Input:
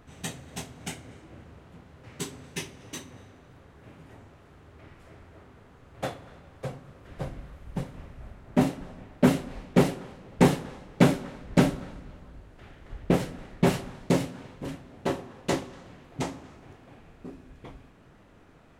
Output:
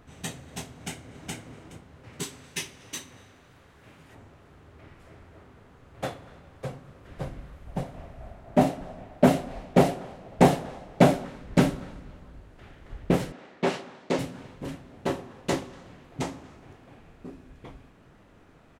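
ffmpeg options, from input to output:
-filter_complex "[0:a]asplit=2[a][b];[b]afade=t=in:st=0.72:d=0.01,afade=t=out:st=1.35:d=0.01,aecho=0:1:420|840|1260:0.944061|0.141609|0.0212414[c];[a][c]amix=inputs=2:normalize=0,asettb=1/sr,asplit=3[d][e][f];[d]atrim=end=2.234[g];[e]atrim=start=2.23:end=4.15,asetpts=PTS-STARTPTS,afade=t=in:d=0.004:c=qsin,afade=t=out:st=1.916:d=0.004:c=qsin,tiltshelf=f=1.1k:g=-4.5[h];[f]atrim=start=4.146[i];[g][h]acrossfade=d=0.004:c1=hsin:c2=qsin[j];[j][i]acrossfade=d=0.004:c1=qsin:c2=hsin,asettb=1/sr,asplit=3[k][l][m];[k]atrim=end=7.674[n];[l]atrim=start=7.67:end=11.25,asetpts=PTS-STARTPTS,afade=t=in:d=0.004:c=qsin,afade=t=out:st=3.576:d=0.004:c=qsin,equalizer=f=680:w=3.1:g=11.5[o];[m]atrim=start=11.246[p];[n][o]acrossfade=d=0.004:c1=hsin:c2=qsin[q];[q][p]acrossfade=d=0.004:c1=qsin:c2=hsin,asettb=1/sr,asplit=3[r][s][t];[r]atrim=end=13.324[u];[s]atrim=start=13.32:end=14.19,asetpts=PTS-STARTPTS,afade=t=in:d=0.004:c=qsin,afade=t=out:st=0.866:d=0.004:c=qsin,highpass=300,lowpass=5.8k[v];[t]atrim=start=14.186[w];[u][v]acrossfade=d=0.004:c1=hsin:c2=qsin[x];[x][w]acrossfade=d=0.004:c1=qsin:c2=hsin"

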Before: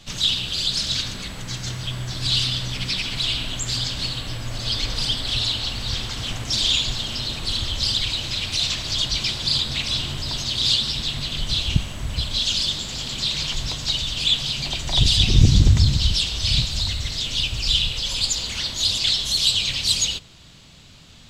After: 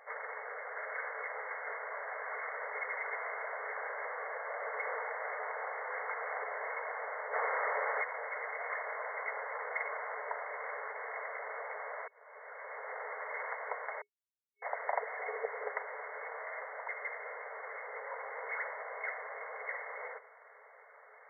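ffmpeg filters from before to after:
-filter_complex "[0:a]asettb=1/sr,asplit=3[a][b][c];[a]atrim=end=7.334[d];[b]atrim=start=7.33:end=8.03,asetpts=PTS-STARTPTS,afade=t=in:d=0.004:c=qsin,afade=t=out:st=0.696:d=0.004:c=qsin,acontrast=85[e];[c]atrim=start=8.026[f];[d][e]acrossfade=d=0.004:c1=hsin:c2=qsin[g];[g][f]acrossfade=d=0.004:c1=qsin:c2=hsin,asplit=4[h][i][j][k];[h]atrim=end=12.08,asetpts=PTS-STARTPTS,afade=t=out:st=12.076:d=0.004:c=hsin[l];[i]atrim=start=12.08:end=14.02,asetpts=PTS-STARTPTS,afade=t=in:d=0.87,afade=t=out:st=1.936:d=0.004:c=hsin[m];[j]atrim=start=14.02:end=14.62,asetpts=PTS-STARTPTS,volume=0[n];[k]atrim=start=14.62,asetpts=PTS-STARTPTS,afade=t=in:d=0.004:c=hsin[o];[l][m][n][o]concat=n=4:v=0:a=1,afftfilt=real='re*between(b*sr/4096,410,2200)':imag='im*between(b*sr/4096,410,2200)':win_size=4096:overlap=0.75,volume=1.5dB"

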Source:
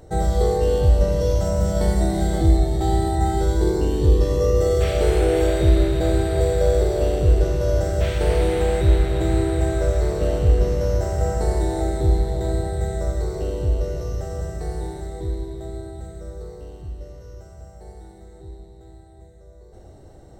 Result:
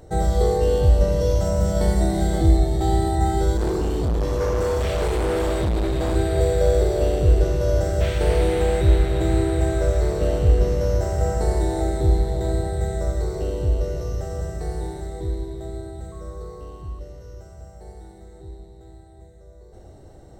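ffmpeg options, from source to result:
-filter_complex "[0:a]asettb=1/sr,asplit=3[a][b][c];[a]atrim=end=3.574[d];[b]atrim=start=3.57:end=6.16,asetpts=PTS-STARTPTS,afade=t=in:d=0.004:c=qsin,afade=t=out:st=2.586:d=0.004:c=qsin,asoftclip=type=hard:threshold=-19dB[e];[c]atrim=start=6.156[f];[d][e]acrossfade=d=0.004:c1=hsin:c2=qsin[g];[g][f]acrossfade=d=0.004:c1=qsin:c2=hsin,asettb=1/sr,asplit=3[h][i][j];[h]atrim=end=16.124[k];[i]atrim=start=16.12:end=16.99,asetpts=PTS-STARTPTS,afade=t=in:d=0.004:c=qsin,afade=t=out:st=0.866:d=0.004:c=qsin,aeval=exprs='val(0)+0.00447*sin(2*PI*1100*n/s)':c=same[l];[j]atrim=start=16.986[m];[k][l]acrossfade=d=0.004:c1=hsin:c2=qsin[n];[n][m]acrossfade=d=0.004:c1=qsin:c2=hsin"

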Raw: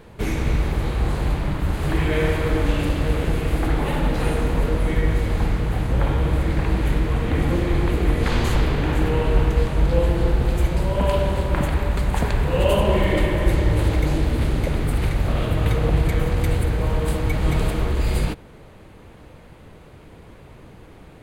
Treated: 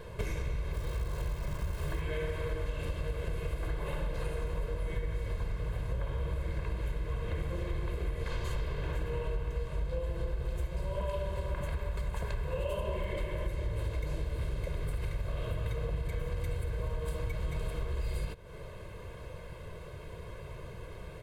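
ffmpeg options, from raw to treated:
-filter_complex "[0:a]asettb=1/sr,asplit=3[a][b][c];[a]atrim=end=0.734[d];[b]atrim=start=0.73:end=2.01,asetpts=PTS-STARTPTS,afade=t=in:d=0.004:c=qsin,afade=t=out:st=1.276:d=0.004:c=qsin,acrusher=bits=7:dc=4:mix=0:aa=0.000001[e];[c]atrim=start=2.006[f];[d][e]acrossfade=d=0.004:c1=hsin:c2=qsin[g];[g][f]acrossfade=d=0.004:c1=qsin:c2=hsin,aecho=1:1:1.9:0.83,acompressor=threshold=-29dB:ratio=6,volume=-3dB"

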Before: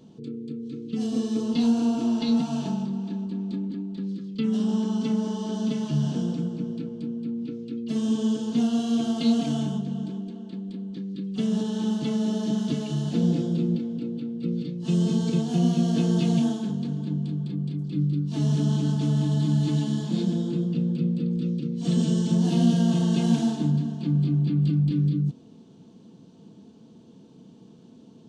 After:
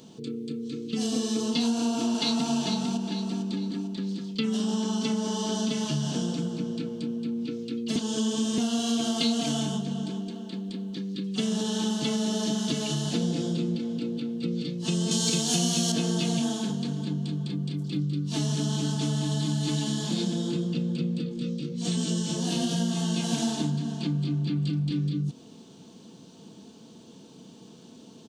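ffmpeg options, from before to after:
-filter_complex "[0:a]asplit=2[a][b];[b]afade=t=in:st=1.69:d=0.01,afade=t=out:st=2.52:d=0.01,aecho=0:1:450|900|1350|1800|2250:0.530884|0.212354|0.0849415|0.0339766|0.0135906[c];[a][c]amix=inputs=2:normalize=0,asettb=1/sr,asplit=3[d][e][f];[d]atrim=end=15.114[g];[e]atrim=start=15.11:end=15.92,asetpts=PTS-STARTPTS,afade=t=in:d=0.004:c=qsin,afade=t=out:st=0.806:d=0.004:c=qsin,highshelf=f=2.9k:g=11.5[h];[f]atrim=start=15.916[i];[g][h]acrossfade=d=0.004:c1=hsin:c2=qsin[j];[j][i]acrossfade=d=0.004:c1=qsin:c2=hsin,asplit=3[k][l][m];[k]afade=t=out:st=21.21:d=0.02[n];[l]flanger=delay=16:depth=5.2:speed=1,afade=t=in:st=21.21:d=0.02,afade=t=out:st=23.32:d=0.02[o];[m]afade=t=in:st=23.32:d=0.02[p];[n][o][p]amix=inputs=3:normalize=0,asplit=3[q][r][s];[q]atrim=end=7.962[t];[r]atrim=start=7.958:end=8.582,asetpts=PTS-STARTPTS,areverse[u];[s]atrim=start=8.578[v];[t][u]acrossfade=d=0.004:c1=hsin:c2=hsin[w];[w][v]acrossfade=d=0.004:c1=hsin:c2=hsin,highshelf=f=3.7k:g=8.5,acompressor=threshold=-26dB:ratio=2.5,lowshelf=f=390:g=-8.5,volume=6.5dB"

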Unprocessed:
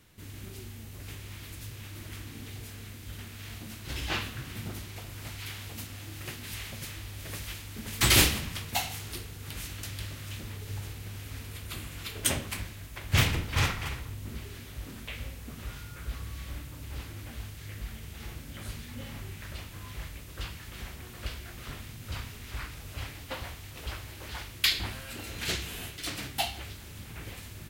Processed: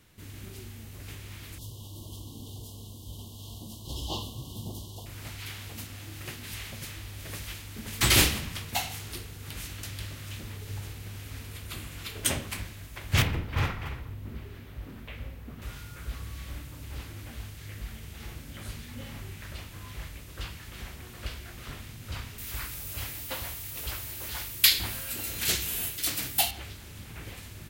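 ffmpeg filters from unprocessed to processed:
-filter_complex "[0:a]asettb=1/sr,asplit=3[a][b][c];[a]atrim=end=1.584[d];[b]atrim=start=1.58:end=5.06,asetpts=PTS-STARTPTS,afade=t=in:d=0.004:c=qsin,afade=t=out:st=3.476:d=0.004:c=qsin,asuperstop=centerf=1800:order=20:qfactor=1[e];[c]atrim=start=5.056[f];[d][e]acrossfade=d=0.004:c1=hsin:c2=qsin[g];[g][f]acrossfade=d=0.004:c1=qsin:c2=hsin,asettb=1/sr,asplit=3[h][i][j];[h]atrim=end=13.224[k];[i]atrim=start=13.22:end=15.62,asetpts=PTS-STARTPTS,afade=t=in:d=0.004:c=qsin,afade=t=out:st=2.396:d=0.004:c=qsin,equalizer=f=7.9k:t=o:w=2.3:g=-13.5[l];[j]atrim=start=15.616[m];[k][l]acrossfade=d=0.004:c1=hsin:c2=qsin[n];[n][m]acrossfade=d=0.004:c1=qsin:c2=hsin,asettb=1/sr,asplit=3[o][p][q];[o]atrim=end=22.384[r];[p]atrim=start=22.38:end=26.51,asetpts=PTS-STARTPTS,afade=t=in:d=0.004:c=qsin,afade=t=out:st=4.126:d=0.004:c=qsin,aemphasis=mode=production:type=50fm[s];[q]atrim=start=26.506[t];[r][s]acrossfade=d=0.004:c1=hsin:c2=qsin[u];[u][t]acrossfade=d=0.004:c1=qsin:c2=hsin"

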